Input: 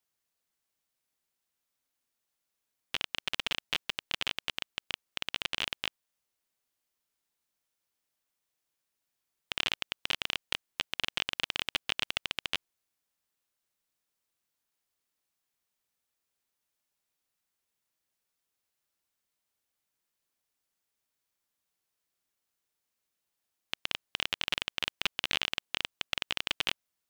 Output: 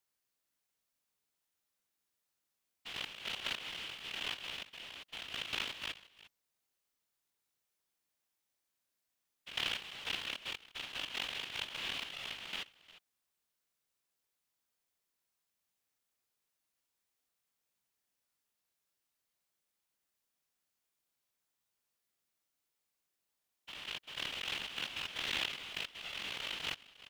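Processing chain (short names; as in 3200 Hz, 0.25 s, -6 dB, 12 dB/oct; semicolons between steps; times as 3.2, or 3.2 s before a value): stepped spectrum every 0.1 s; echo 0.353 s -18.5 dB; whisperiser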